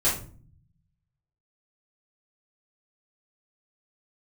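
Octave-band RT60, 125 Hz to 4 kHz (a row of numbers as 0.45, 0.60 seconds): 1.4, 1.0, 0.50, 0.40, 0.30, 0.30 seconds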